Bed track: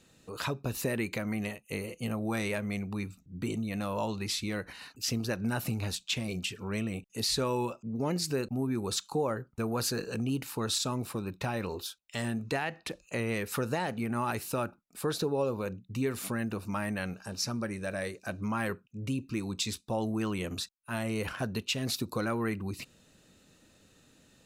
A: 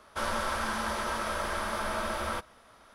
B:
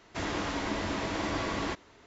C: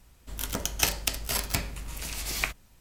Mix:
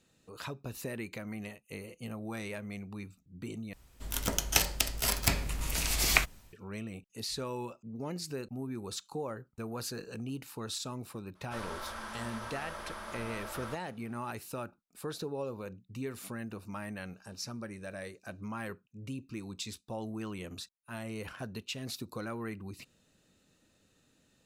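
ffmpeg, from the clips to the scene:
-filter_complex "[0:a]volume=-7.5dB[a];[3:a]dynaudnorm=f=290:g=3:m=11.5dB[b];[a]asplit=2[c][d];[c]atrim=end=3.734[e];[b]atrim=end=2.8,asetpts=PTS-STARTPTS,volume=-2.5dB[f];[d]atrim=start=6.526[g];[1:a]atrim=end=2.94,asetpts=PTS-STARTPTS,volume=-10.5dB,afade=t=in:d=0.004:c=hsin,afade=t=out:st=2.936:d=0.004:c=hsin,adelay=11350[h];[e][f]acrossfade=d=0.004:c1=hsin:c2=hsin[i];[i][g]acrossfade=d=0.004:c1=hsin:c2=hsin[j];[j][h]amix=inputs=2:normalize=0"

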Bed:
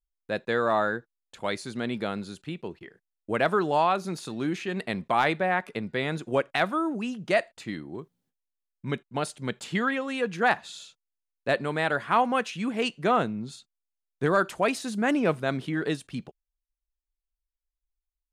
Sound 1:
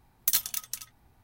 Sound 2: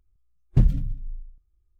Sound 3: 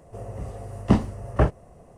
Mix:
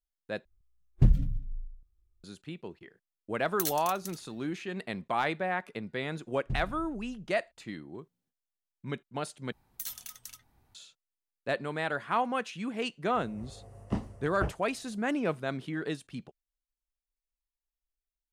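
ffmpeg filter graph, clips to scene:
-filter_complex "[2:a]asplit=2[a][b];[1:a]asplit=2[c][d];[0:a]volume=-6dB[e];[b]aresample=22050,aresample=44100[f];[d]alimiter=limit=-21dB:level=0:latency=1:release=29[g];[e]asplit=3[h][i][j];[h]atrim=end=0.454[k];[a]atrim=end=1.79,asetpts=PTS-STARTPTS,volume=-3.5dB[l];[i]atrim=start=2.236:end=9.524[m];[g]atrim=end=1.23,asetpts=PTS-STARTPTS,volume=-5.5dB[n];[j]atrim=start=10.746[o];[c]atrim=end=1.23,asetpts=PTS-STARTPTS,volume=-8dB,afade=t=in:d=0.004:c=hsin,afade=t=out:st=1.226:d=0.004:c=hsin,adelay=3320[p];[f]atrim=end=1.79,asetpts=PTS-STARTPTS,volume=-17dB,afade=t=in:d=0.004:c=hsin,afade=t=out:st=1.786:d=0.004:c=hsin,adelay=261513S[q];[3:a]atrim=end=1.97,asetpts=PTS-STARTPTS,volume=-13.5dB,afade=t=in:d=0.004:c=hsin,afade=t=out:st=1.966:d=0.004:c=hsin,adelay=13020[r];[k][l]acrossfade=d=0.004:c1=hsin:c2=hsin[s];[s][m]acrossfade=d=0.004:c1=hsin:c2=hsin[t];[t][n]acrossfade=d=0.004:c1=hsin:c2=hsin[u];[u][o]acrossfade=d=0.004:c1=hsin:c2=hsin[v];[v][p][q][r]amix=inputs=4:normalize=0"

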